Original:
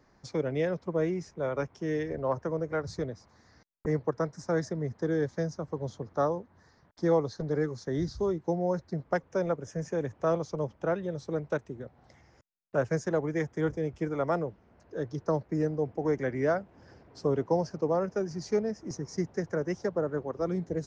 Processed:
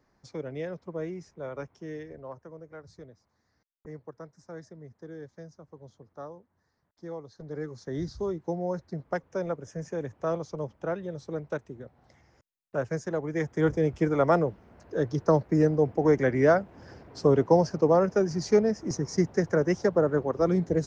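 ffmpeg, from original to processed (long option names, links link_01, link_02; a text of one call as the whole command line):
ffmpeg -i in.wav -af "volume=14.5dB,afade=type=out:start_time=1.7:duration=0.7:silence=0.398107,afade=type=in:start_time=7.27:duration=0.72:silence=0.251189,afade=type=in:start_time=13.25:duration=0.55:silence=0.375837" out.wav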